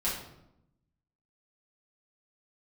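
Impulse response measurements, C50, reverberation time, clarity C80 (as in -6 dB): 3.5 dB, 0.85 s, 7.5 dB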